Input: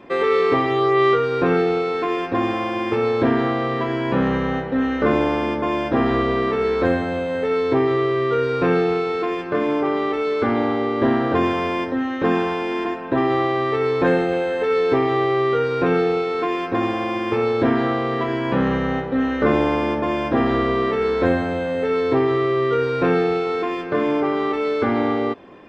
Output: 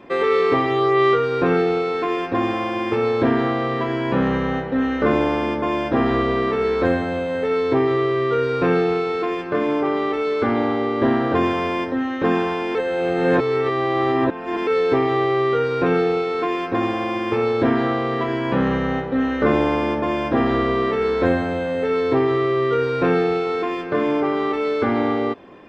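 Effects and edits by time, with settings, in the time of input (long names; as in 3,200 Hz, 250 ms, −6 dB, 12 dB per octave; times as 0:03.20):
0:12.75–0:14.67: reverse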